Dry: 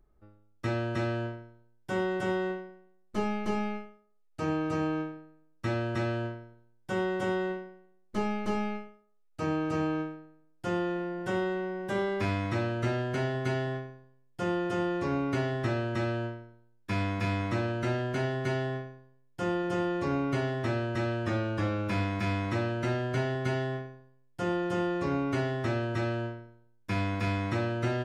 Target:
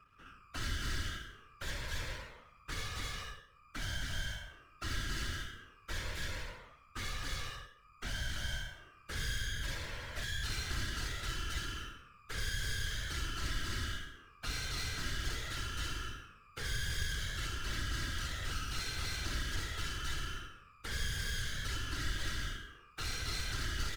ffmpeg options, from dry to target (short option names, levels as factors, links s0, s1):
-filter_complex "[0:a]afftfilt=real='real(if(lt(b,960),b+48*(1-2*mod(floor(b/48),2)),b),0)':imag='imag(if(lt(b,960),b+48*(1-2*mod(floor(b/48),2)),b),0)':win_size=2048:overlap=0.75,asetrate=51597,aresample=44100,lowshelf=f=230:t=q:w=3:g=-10.5,aecho=1:1:63|126|189|252:0.708|0.212|0.0637|0.0191,acrossover=split=560|4000[s0][s1][s2];[s1]asoftclip=type=tanh:threshold=0.0398[s3];[s0][s3][s2]amix=inputs=3:normalize=0,aecho=1:1:3.1:0.51,aeval=exprs='max(val(0),0)':c=same,afftfilt=real='hypot(re,im)*cos(2*PI*random(0))':imag='hypot(re,im)*sin(2*PI*random(1))':win_size=512:overlap=0.75,acrossover=split=140|3000[s4][s5][s6];[s5]acompressor=threshold=0.00251:ratio=5[s7];[s4][s7][s6]amix=inputs=3:normalize=0,volume=2"